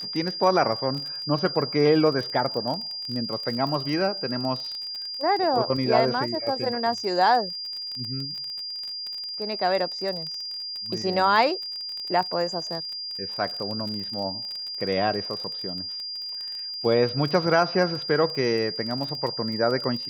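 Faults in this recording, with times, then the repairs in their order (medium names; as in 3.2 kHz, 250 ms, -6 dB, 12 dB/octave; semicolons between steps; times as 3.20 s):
crackle 24 per s -30 dBFS
whine 4.8 kHz -31 dBFS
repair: de-click; band-stop 4.8 kHz, Q 30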